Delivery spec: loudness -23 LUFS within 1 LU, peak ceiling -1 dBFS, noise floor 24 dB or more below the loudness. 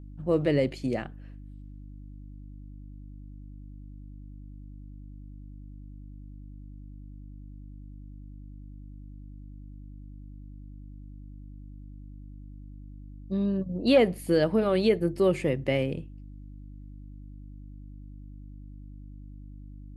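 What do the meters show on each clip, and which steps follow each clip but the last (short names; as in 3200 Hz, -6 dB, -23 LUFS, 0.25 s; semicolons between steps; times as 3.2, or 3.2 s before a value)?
hum 50 Hz; harmonics up to 300 Hz; hum level -41 dBFS; loudness -26.0 LUFS; peak -10.5 dBFS; loudness target -23.0 LUFS
-> de-hum 50 Hz, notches 6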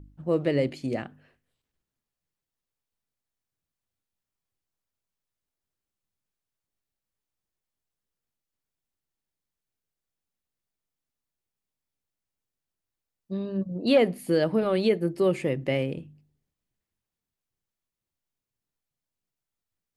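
hum none; loudness -26.0 LUFS; peak -10.0 dBFS; loudness target -23.0 LUFS
-> gain +3 dB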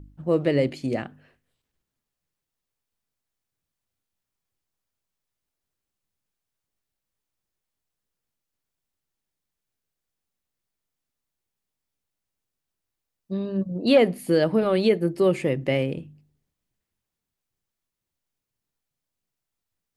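loudness -23.0 LUFS; peak -7.0 dBFS; noise floor -85 dBFS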